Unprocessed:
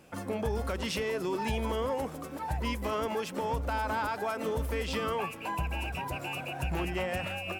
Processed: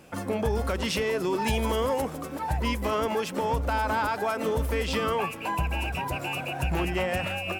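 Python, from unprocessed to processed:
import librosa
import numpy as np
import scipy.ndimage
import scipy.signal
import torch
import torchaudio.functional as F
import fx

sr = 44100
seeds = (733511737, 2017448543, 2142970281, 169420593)

y = fx.high_shelf(x, sr, hz=4500.0, db=6.5, at=(1.46, 2.02))
y = y * librosa.db_to_amplitude(5.0)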